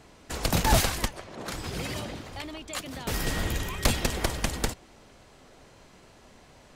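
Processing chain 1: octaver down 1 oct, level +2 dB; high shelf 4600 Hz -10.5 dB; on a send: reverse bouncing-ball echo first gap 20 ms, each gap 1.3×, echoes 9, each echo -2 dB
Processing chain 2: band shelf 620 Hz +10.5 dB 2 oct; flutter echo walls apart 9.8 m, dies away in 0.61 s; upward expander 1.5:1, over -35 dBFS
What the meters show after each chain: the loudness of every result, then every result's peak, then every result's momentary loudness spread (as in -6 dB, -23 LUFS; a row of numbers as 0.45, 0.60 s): -25.5, -25.5 LUFS; -3.5, -2.0 dBFS; 14, 22 LU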